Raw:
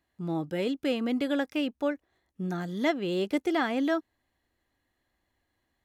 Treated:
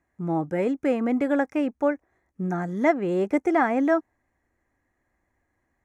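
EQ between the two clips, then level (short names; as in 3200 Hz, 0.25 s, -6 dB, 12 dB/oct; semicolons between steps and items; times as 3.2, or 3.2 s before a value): band shelf 3700 Hz -16 dB 1 oct; dynamic EQ 800 Hz, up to +5 dB, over -44 dBFS, Q 1.9; air absorption 54 m; +4.5 dB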